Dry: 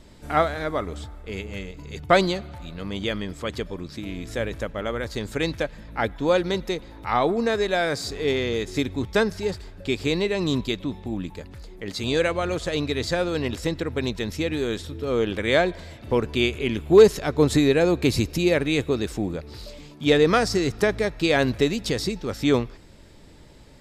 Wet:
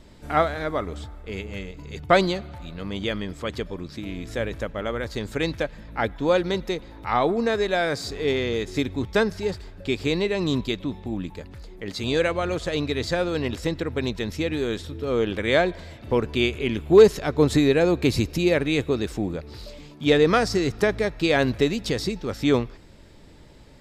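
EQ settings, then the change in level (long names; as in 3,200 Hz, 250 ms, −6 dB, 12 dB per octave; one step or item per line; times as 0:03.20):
parametric band 9,800 Hz −3.5 dB 1.5 octaves
0.0 dB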